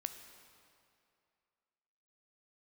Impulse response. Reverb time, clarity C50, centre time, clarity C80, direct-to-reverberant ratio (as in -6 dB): 2.5 s, 8.5 dB, 28 ms, 9.5 dB, 7.5 dB